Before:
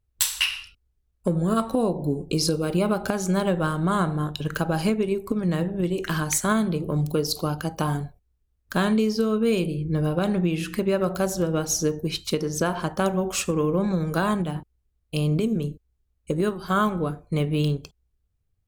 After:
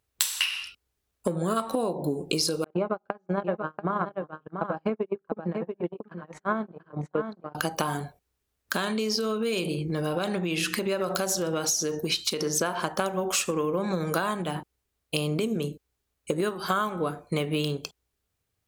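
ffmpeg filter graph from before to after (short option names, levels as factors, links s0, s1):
-filter_complex "[0:a]asettb=1/sr,asplit=3[s0][s1][s2];[s0]atrim=end=2.644[s3];[s1]atrim=start=2.64:end=7.55,asetpts=PTS-STARTPTS,afade=t=in:d=0.004:c=qsin,afade=t=out:st=4.906:d=0.004:c=qsin,agate=range=0.00891:threshold=0.0794:ratio=16:release=100:detection=peak,lowpass=1300,aecho=1:1:686:0.316,atrim=end_sample=216531[s4];[s2]atrim=start=7.546[s5];[s3][s4]acrossfade=d=0.004:c1=hsin:c2=qsin[s6];[s6][s5]acrossfade=d=0.004:c1=qsin:c2=hsin,asettb=1/sr,asplit=3[s7][s8][s9];[s7]atrim=end=8.734[s10];[s8]atrim=start=8.73:end=12.47,asetpts=PTS-STARTPTS,afade=t=in:d=0.004:c=qsin,afade=t=out:st=3.736:d=0.004:c=qsin,equalizer=f=5000:t=o:w=1.4:g=4,acompressor=threshold=0.0631:ratio=6:attack=3.2:release=140:knee=1:detection=peak[s11];[s9]atrim=start=12.466[s12];[s10][s11]acrossfade=d=0.004:c1=hsin:c2=qsin[s13];[s13][s12]acrossfade=d=0.004:c1=qsin:c2=hsin,highpass=f=540:p=1,acompressor=threshold=0.0251:ratio=6,volume=2.66"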